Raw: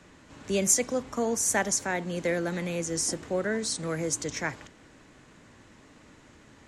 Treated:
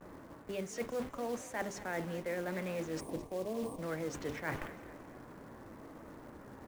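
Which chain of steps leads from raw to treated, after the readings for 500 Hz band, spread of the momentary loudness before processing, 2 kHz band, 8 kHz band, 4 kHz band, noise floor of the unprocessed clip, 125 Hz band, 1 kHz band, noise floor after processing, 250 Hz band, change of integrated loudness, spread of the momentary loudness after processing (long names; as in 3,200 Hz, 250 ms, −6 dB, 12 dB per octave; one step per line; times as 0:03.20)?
−8.0 dB, 9 LU, −9.5 dB, −23.5 dB, −15.5 dB, −55 dBFS, −8.5 dB, −7.5 dB, −53 dBFS, −8.5 dB, −11.5 dB, 14 LU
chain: pitch vibrato 0.89 Hz 71 cents
low-pass that shuts in the quiet parts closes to 980 Hz, open at −24 dBFS
high-shelf EQ 6,300 Hz −7.5 dB
mains-hum notches 50/100/150/200/250/300/350/400/450 Hz
in parallel at −10 dB: comparator with hysteresis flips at −38.5 dBFS
on the sum: time-frequency box erased 0:03.00–0:03.81, 1,200–8,400 Hz
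reversed playback
downward compressor 10 to 1, threshold −41 dBFS, peak gain reduction 20.5 dB
reversed playback
bass and treble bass −5 dB, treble −14 dB
floating-point word with a short mantissa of 2 bits
echo with shifted repeats 215 ms, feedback 47%, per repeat +47 Hz, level −16 dB
level +7 dB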